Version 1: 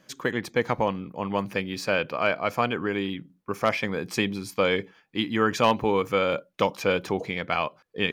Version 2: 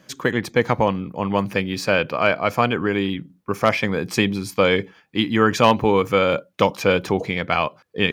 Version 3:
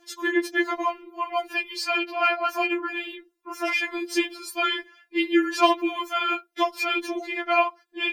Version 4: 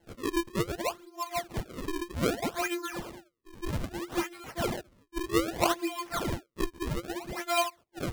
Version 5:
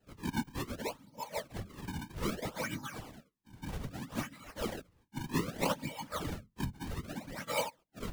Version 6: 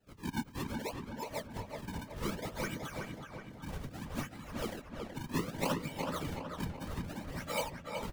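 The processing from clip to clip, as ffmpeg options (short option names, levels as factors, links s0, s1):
-af "highpass=63,lowshelf=f=100:g=8.5,volume=1.88"
-af "afftfilt=real='re*4*eq(mod(b,16),0)':imag='im*4*eq(mod(b,16),0)':win_size=2048:overlap=0.75"
-af "acrusher=samples=36:mix=1:aa=0.000001:lfo=1:lforange=57.6:lforate=0.63,volume=0.473"
-af "afreqshift=-130,afftfilt=real='hypot(re,im)*cos(2*PI*random(0))':imag='hypot(re,im)*sin(2*PI*random(1))':win_size=512:overlap=0.75"
-filter_complex "[0:a]asplit=2[s0][s1];[s1]adelay=374,lowpass=f=3100:p=1,volume=0.631,asplit=2[s2][s3];[s3]adelay=374,lowpass=f=3100:p=1,volume=0.53,asplit=2[s4][s5];[s5]adelay=374,lowpass=f=3100:p=1,volume=0.53,asplit=2[s6][s7];[s7]adelay=374,lowpass=f=3100:p=1,volume=0.53,asplit=2[s8][s9];[s9]adelay=374,lowpass=f=3100:p=1,volume=0.53,asplit=2[s10][s11];[s11]adelay=374,lowpass=f=3100:p=1,volume=0.53,asplit=2[s12][s13];[s13]adelay=374,lowpass=f=3100:p=1,volume=0.53[s14];[s0][s2][s4][s6][s8][s10][s12][s14]amix=inputs=8:normalize=0,volume=0.794"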